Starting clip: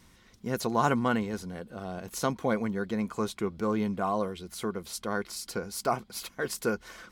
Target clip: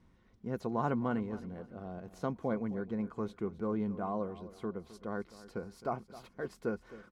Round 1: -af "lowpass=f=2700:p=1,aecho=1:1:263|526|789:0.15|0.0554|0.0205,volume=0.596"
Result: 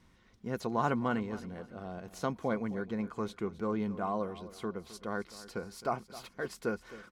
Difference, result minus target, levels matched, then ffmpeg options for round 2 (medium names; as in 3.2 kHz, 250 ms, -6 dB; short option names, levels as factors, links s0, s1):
2 kHz band +4.5 dB
-af "lowpass=f=750:p=1,aecho=1:1:263|526|789:0.15|0.0554|0.0205,volume=0.596"